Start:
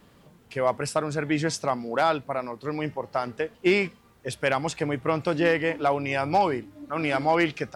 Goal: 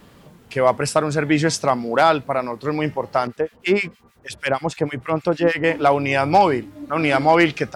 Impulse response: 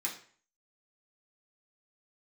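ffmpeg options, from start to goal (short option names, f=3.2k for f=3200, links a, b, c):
-filter_complex "[0:a]asettb=1/sr,asplit=3[a][b][c];[a]atrim=end=3.274[d];[b]atrim=start=3.27:end=5.64,asetpts=PTS-STARTPTS,afade=t=in:d=0.004:c=qsin,afade=t=out:st=2.366:d=0.004:c=qsin,acrossover=split=1400[e][f];[e]aeval=exprs='val(0)*(1-1/2+1/2*cos(2*PI*6.4*n/s))':c=same[g];[f]aeval=exprs='val(0)*(1-1/2-1/2*cos(2*PI*6.4*n/s))':c=same[h];[g][h]amix=inputs=2:normalize=0[i];[c]atrim=start=5.636[j];[d][i]acrossfade=d=0.004:c1=hsin:c2=qsin[k];[k][j]acrossfade=d=0.004:c1=qsin:c2=hsin,volume=7.5dB"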